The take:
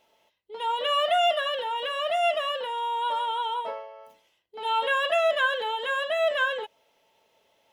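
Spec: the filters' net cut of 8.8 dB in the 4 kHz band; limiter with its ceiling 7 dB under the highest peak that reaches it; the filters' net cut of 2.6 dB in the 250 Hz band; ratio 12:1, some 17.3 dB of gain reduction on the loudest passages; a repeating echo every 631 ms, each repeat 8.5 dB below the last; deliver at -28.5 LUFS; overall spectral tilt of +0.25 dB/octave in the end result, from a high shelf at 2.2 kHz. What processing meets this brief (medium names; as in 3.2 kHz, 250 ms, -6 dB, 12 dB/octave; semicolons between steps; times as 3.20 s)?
peaking EQ 250 Hz -3.5 dB; treble shelf 2.2 kHz -6 dB; peaking EQ 4 kHz -8 dB; compression 12:1, threshold -39 dBFS; peak limiter -38.5 dBFS; feedback delay 631 ms, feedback 38%, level -8.5 dB; trim +16 dB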